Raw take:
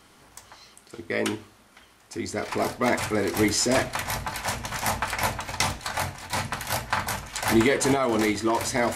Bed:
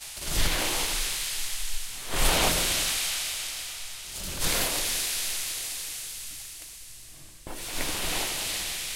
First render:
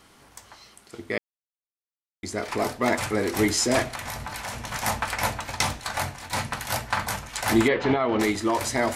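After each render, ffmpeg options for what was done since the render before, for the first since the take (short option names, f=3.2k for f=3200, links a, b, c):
-filter_complex "[0:a]asettb=1/sr,asplit=3[a][b][c];[a]atrim=end=3.904[d];[b]atrim=start=3.9:end=4.67,asetpts=PTS-STARTPTS,afade=t=in:d=0.004:c=qsin,afade=t=out:st=0.766:d=0.004:c=qsin,acompressor=threshold=-29dB:ratio=6:attack=3.2:release=140:knee=1:detection=peak[e];[c]atrim=start=4.666[f];[d][e]acrossfade=d=0.004:c1=hsin:c2=qsin[g];[g][f]acrossfade=d=0.004:c1=qsin:c2=hsin,asettb=1/sr,asplit=3[h][i][j];[h]atrim=end=7.684[k];[i]atrim=start=7.68:end=8.2,asetpts=PTS-STARTPTS,afade=t=in:d=0.004:c=qsin,afade=t=out:st=0.516:d=0.004:c=qsin,lowpass=f=3.6k:w=0.5412,lowpass=f=3.6k:w=1.3066[l];[j]atrim=start=8.196[m];[k][l]acrossfade=d=0.004:c1=hsin:c2=qsin[n];[n][m]acrossfade=d=0.004:c1=qsin:c2=hsin,asplit=3[o][p][q];[o]atrim=end=1.18,asetpts=PTS-STARTPTS,afade=t=out:st=1.176:d=0.004:c=hsin[r];[p]atrim=start=1.18:end=2.23,asetpts=PTS-STARTPTS,volume=0[s];[q]atrim=start=2.23,asetpts=PTS-STARTPTS,afade=t=in:d=0.004:c=hsin[t];[r][s][t]concat=n=3:v=0:a=1"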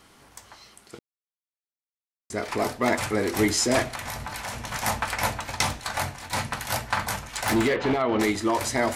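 -filter_complex "[0:a]asettb=1/sr,asplit=3[a][b][c];[a]atrim=end=7.174[d];[b]atrim=start=7.17:end=8.02,asetpts=PTS-STARTPTS,afade=t=in:d=0.004:c=qsin,afade=t=out:st=0.846:d=0.004:c=qsin,asoftclip=type=hard:threshold=-18dB[e];[c]atrim=start=8.016[f];[d][e]acrossfade=d=0.004:c1=hsin:c2=qsin[g];[g][f]acrossfade=d=0.004:c1=qsin:c2=hsin,asplit=3[h][i][j];[h]atrim=end=0.99,asetpts=PTS-STARTPTS,afade=t=out:st=0.986:d=0.004:c=hsin[k];[i]atrim=start=0.99:end=2.3,asetpts=PTS-STARTPTS,volume=0[l];[j]atrim=start=2.3,asetpts=PTS-STARTPTS,afade=t=in:d=0.004:c=hsin[m];[k][l][m]concat=n=3:v=0:a=1"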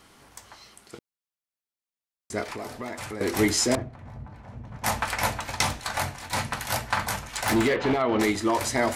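-filter_complex "[0:a]asettb=1/sr,asplit=3[a][b][c];[a]atrim=end=2.434[d];[b]atrim=start=2.43:end=3.21,asetpts=PTS-STARTPTS,afade=t=in:d=0.004:c=qsin,afade=t=out:st=0.776:d=0.004:c=qsin,acompressor=threshold=-33dB:ratio=4:attack=3.2:release=140:knee=1:detection=peak[e];[c]atrim=start=3.206[f];[d][e]acrossfade=d=0.004:c1=hsin:c2=qsin[g];[g][f]acrossfade=d=0.004:c1=qsin:c2=hsin,asettb=1/sr,asplit=3[h][i][j];[h]atrim=end=3.754[k];[i]atrim=start=3.75:end=4.84,asetpts=PTS-STARTPTS,afade=t=in:d=0.004:c=qsin,afade=t=out:st=1.086:d=0.004:c=qsin,bandpass=f=110:t=q:w=0.63[l];[j]atrim=start=4.836[m];[k][l]acrossfade=d=0.004:c1=hsin:c2=qsin[n];[n][m]acrossfade=d=0.004:c1=qsin:c2=hsin"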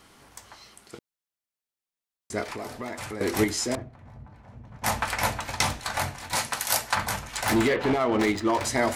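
-filter_complex "[0:a]asettb=1/sr,asplit=3[a][b][c];[a]atrim=end=6.354[d];[b]atrim=start=6.35:end=6.95,asetpts=PTS-STARTPTS,afade=t=in:d=0.004:c=qsin,afade=t=out:st=0.596:d=0.004:c=qsin,bass=f=250:g=-11,treble=f=4k:g=8[e];[c]atrim=start=6.946[f];[d][e]acrossfade=d=0.004:c1=hsin:c2=qsin[g];[g][f]acrossfade=d=0.004:c1=qsin:c2=hsin,asettb=1/sr,asplit=3[h][i][j];[h]atrim=end=7.794[k];[i]atrim=start=7.79:end=8.65,asetpts=PTS-STARTPTS,afade=t=in:d=0.004:c=qsin,afade=t=out:st=0.856:d=0.004:c=qsin,adynamicsmooth=sensitivity=7:basefreq=2.3k[l];[j]atrim=start=8.646[m];[k][l]acrossfade=d=0.004:c1=hsin:c2=qsin[n];[n][m]acrossfade=d=0.004:c1=qsin:c2=hsin,asplit=3[o][p][q];[o]atrim=end=3.442[r];[p]atrim=start=3.438:end=4.822,asetpts=PTS-STARTPTS,volume=-5dB[s];[q]atrim=start=4.818[t];[r][s]acrossfade=d=0.004:c1=hsin:c2=hsin[u];[u][t]acrossfade=d=0.004:c1=hsin:c2=hsin"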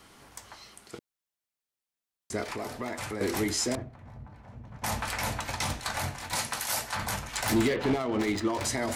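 -filter_complex "[0:a]alimiter=limit=-19dB:level=0:latency=1:release=21,acrossover=split=400|3000[a][b][c];[b]acompressor=threshold=-31dB:ratio=6[d];[a][d][c]amix=inputs=3:normalize=0"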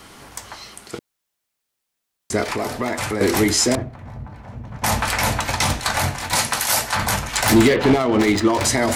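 -af "volume=11.5dB"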